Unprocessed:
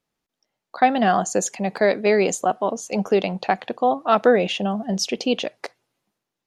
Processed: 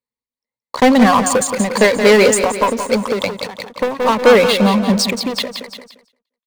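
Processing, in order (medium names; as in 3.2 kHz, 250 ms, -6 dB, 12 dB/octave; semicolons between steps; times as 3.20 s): reverb removal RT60 0.82 s; rippled EQ curve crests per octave 0.96, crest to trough 15 dB; waveshaping leveller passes 5; on a send: feedback delay 174 ms, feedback 52%, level -9 dB; on the sum: endings held to a fixed fall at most 110 dB/s; trim -6 dB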